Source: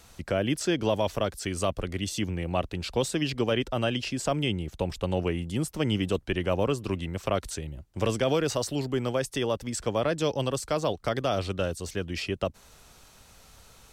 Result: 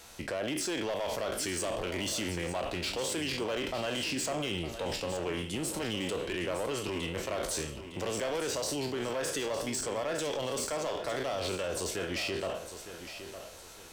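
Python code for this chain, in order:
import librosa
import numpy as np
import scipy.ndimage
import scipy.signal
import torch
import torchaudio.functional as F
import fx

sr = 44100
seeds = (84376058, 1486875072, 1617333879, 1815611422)

p1 = fx.spec_trails(x, sr, decay_s=0.39)
p2 = fx.bass_treble(p1, sr, bass_db=-10, treble_db=0)
p3 = fx.notch(p2, sr, hz=1200.0, q=13.0)
p4 = fx.over_compress(p3, sr, threshold_db=-35.0, ratio=-1.0)
p5 = p3 + F.gain(torch.from_numpy(p4), 2.0).numpy()
p6 = np.clip(p5, -10.0 ** (-21.5 / 20.0), 10.0 ** (-21.5 / 20.0))
p7 = p6 + fx.echo_feedback(p6, sr, ms=909, feedback_pct=35, wet_db=-11.0, dry=0)
y = F.gain(torch.from_numpy(p7), -7.5).numpy()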